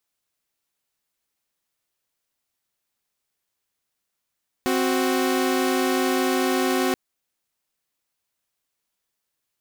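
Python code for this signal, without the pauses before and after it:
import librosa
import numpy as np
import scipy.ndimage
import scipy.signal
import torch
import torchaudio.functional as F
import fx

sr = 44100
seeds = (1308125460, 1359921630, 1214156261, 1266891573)

y = fx.chord(sr, length_s=2.28, notes=(60, 66), wave='saw', level_db=-20.0)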